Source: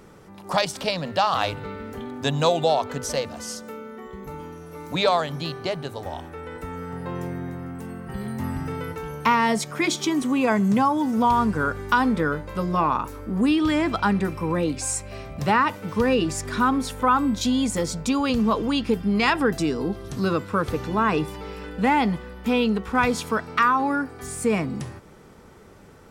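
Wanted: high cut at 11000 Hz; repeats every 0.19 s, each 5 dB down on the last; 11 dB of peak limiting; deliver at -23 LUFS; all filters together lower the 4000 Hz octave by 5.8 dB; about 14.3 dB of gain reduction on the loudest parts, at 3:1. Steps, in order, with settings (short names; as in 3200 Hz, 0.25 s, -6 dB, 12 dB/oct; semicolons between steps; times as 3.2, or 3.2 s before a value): LPF 11000 Hz; bell 4000 Hz -7.5 dB; compressor 3:1, threshold -36 dBFS; limiter -28.5 dBFS; feedback echo 0.19 s, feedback 56%, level -5 dB; gain +13.5 dB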